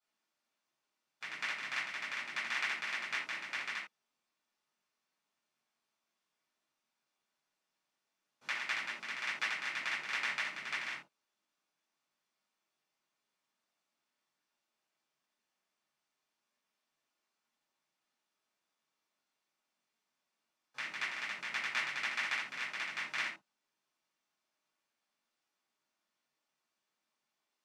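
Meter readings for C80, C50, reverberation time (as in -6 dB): 9.5 dB, 5.5 dB, not exponential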